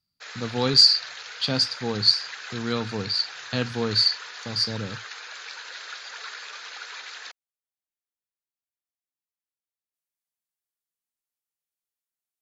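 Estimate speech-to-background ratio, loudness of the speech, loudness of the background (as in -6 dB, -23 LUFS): 15.5 dB, -21.5 LUFS, -37.0 LUFS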